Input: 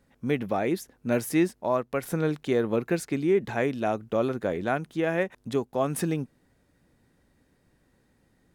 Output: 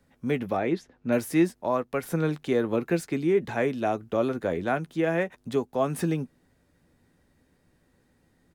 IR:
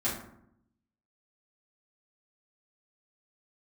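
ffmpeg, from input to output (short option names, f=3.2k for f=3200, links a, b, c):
-filter_complex "[0:a]asplit=3[a][b][c];[a]afade=t=out:st=0.56:d=0.02[d];[b]lowpass=4k,afade=t=in:st=0.56:d=0.02,afade=t=out:st=1.11:d=0.02[e];[c]afade=t=in:st=1.11:d=0.02[f];[d][e][f]amix=inputs=3:normalize=0,acrossover=split=280|650|2600[g][h][i][j];[j]asoftclip=type=tanh:threshold=-34.5dB[k];[g][h][i][k]amix=inputs=4:normalize=0,asplit=2[l][m];[m]adelay=12,volume=-12dB[n];[l][n]amix=inputs=2:normalize=0"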